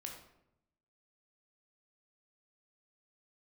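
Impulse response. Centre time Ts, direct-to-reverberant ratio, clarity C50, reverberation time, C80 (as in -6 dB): 31 ms, 1.0 dB, 5.0 dB, 0.80 s, 8.0 dB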